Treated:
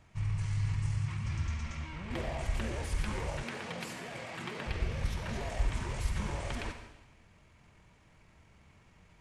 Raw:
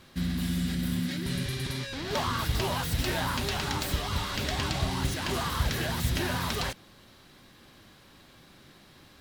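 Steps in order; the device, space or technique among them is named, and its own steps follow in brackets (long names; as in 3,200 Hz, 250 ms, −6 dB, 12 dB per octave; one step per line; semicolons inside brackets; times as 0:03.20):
monster voice (pitch shifter −9.5 semitones; low-shelf EQ 150 Hz +7 dB; convolution reverb RT60 0.95 s, pre-delay 47 ms, DRR 6.5 dB)
0:03.43–0:04.66: high-pass filter 140 Hz 24 dB per octave
level −9 dB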